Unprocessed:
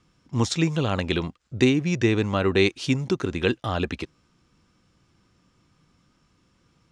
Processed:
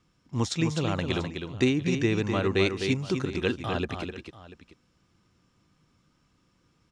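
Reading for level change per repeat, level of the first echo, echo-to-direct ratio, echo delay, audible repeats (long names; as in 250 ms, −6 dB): repeats not evenly spaced, −6.5 dB, −6.0 dB, 255 ms, 2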